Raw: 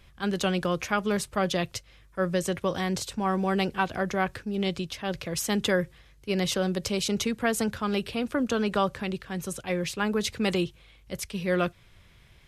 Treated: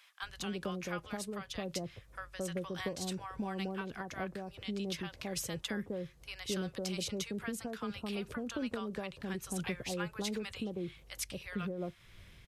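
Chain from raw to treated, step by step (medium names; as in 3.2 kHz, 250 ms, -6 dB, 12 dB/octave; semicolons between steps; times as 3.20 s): compression 6:1, threshold -35 dBFS, peak gain reduction 15 dB; bands offset in time highs, lows 220 ms, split 860 Hz; random flutter of the level, depth 50%; trim +2.5 dB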